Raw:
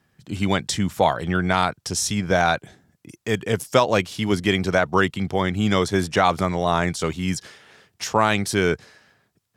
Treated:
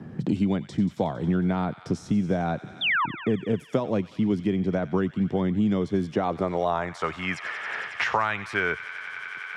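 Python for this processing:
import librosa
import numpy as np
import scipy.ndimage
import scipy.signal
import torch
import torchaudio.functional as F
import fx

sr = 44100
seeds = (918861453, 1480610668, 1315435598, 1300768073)

y = fx.filter_sweep_bandpass(x, sr, from_hz=220.0, to_hz=1700.0, start_s=6.05, end_s=7.25, q=1.1)
y = fx.spec_paint(y, sr, seeds[0], shape='fall', start_s=2.81, length_s=0.25, low_hz=870.0, high_hz=3700.0, level_db=-29.0)
y = fx.echo_wet_highpass(y, sr, ms=91, feedback_pct=72, hz=1700.0, wet_db=-13.0)
y = fx.band_squash(y, sr, depth_pct=100)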